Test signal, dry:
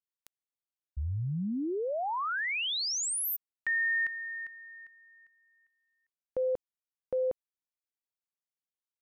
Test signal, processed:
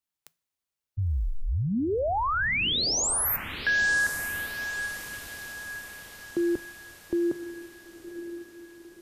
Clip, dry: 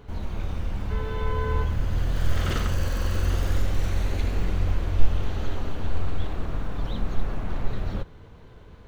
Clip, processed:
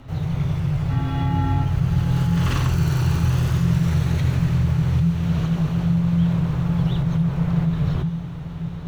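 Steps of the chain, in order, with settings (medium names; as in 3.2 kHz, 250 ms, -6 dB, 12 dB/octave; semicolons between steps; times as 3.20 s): compression, threshold -21 dBFS; frequency shift -170 Hz; echo that smears into a reverb 990 ms, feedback 55%, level -11 dB; two-slope reverb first 0.25 s, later 1.8 s, from -18 dB, DRR 17.5 dB; trim +5.5 dB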